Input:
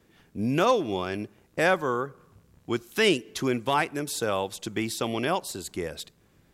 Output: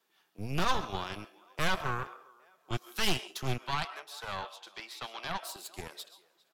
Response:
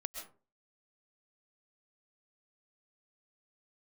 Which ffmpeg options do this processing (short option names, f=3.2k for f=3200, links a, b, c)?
-filter_complex "[0:a]asplit=2[a][b];[b]adelay=404,lowpass=f=5k:p=1,volume=-22dB,asplit=2[c][d];[d]adelay=404,lowpass=f=5k:p=1,volume=0.39,asplit=2[e][f];[f]adelay=404,lowpass=f=5k:p=1,volume=0.39[g];[a][c][e][g]amix=inputs=4:normalize=0,flanger=delay=4.4:depth=2:regen=-46:speed=1.2:shape=triangular,asettb=1/sr,asplit=3[h][i][j];[h]atrim=end=3.584[k];[i]atrim=start=3.58:end=5.43,asetpts=PTS-STARTPTS,afade=t=in:d=0.004:c=qsin,afade=t=out:st=1.846:d=0.004:c=qsin,acrossover=split=490 4500:gain=0.2 1 0.224[l][m][n];[l][m][n]amix=inputs=3:normalize=0[o];[j]atrim=start=5.426[p];[k][o]acrossfade=d=0.004:c1=hsin:c2=qsin[q];[q][p]acrossfade=d=0.004:c1=qsin:c2=hsin,asplit=2[r][s];[1:a]atrim=start_sample=2205[t];[s][t]afir=irnorm=-1:irlink=0,volume=0dB[u];[r][u]amix=inputs=2:normalize=0,aeval=exprs='0.422*(cos(1*acos(clip(val(0)/0.422,-1,1)))-cos(1*PI/2))+0.106*(cos(6*acos(clip(val(0)/0.422,-1,1)))-cos(6*PI/2))':c=same,equalizer=f=250:t=o:w=1:g=-11,equalizer=f=500:t=o:w=1:g=-12,equalizer=f=2k:t=o:w=1:g=-8,equalizer=f=8k:t=o:w=1:g=-6,acrossover=split=300|1100[v][w][x];[v]aeval=exprs='sgn(val(0))*max(abs(val(0))-0.015,0)':c=same[y];[y][w][x]amix=inputs=3:normalize=0,volume=-3.5dB"